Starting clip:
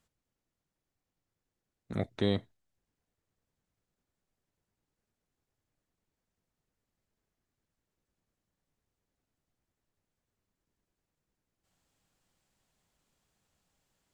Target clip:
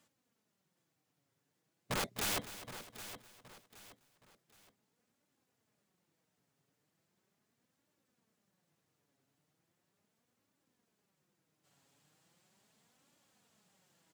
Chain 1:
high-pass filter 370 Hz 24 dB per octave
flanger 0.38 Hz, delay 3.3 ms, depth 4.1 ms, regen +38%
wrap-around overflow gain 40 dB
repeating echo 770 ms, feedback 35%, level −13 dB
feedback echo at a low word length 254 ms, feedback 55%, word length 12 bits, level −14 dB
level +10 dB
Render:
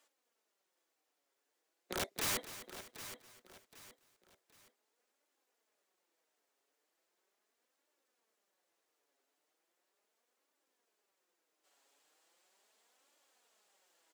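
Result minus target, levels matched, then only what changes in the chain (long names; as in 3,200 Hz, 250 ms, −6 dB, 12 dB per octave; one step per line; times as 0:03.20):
125 Hz band −5.0 dB
change: high-pass filter 110 Hz 24 dB per octave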